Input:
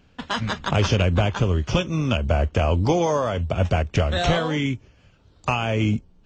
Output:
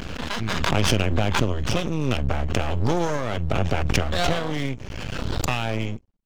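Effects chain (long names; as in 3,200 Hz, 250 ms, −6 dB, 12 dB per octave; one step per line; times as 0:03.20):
fade-out on the ending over 0.65 s
half-wave rectification
background raised ahead of every attack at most 20 dB per second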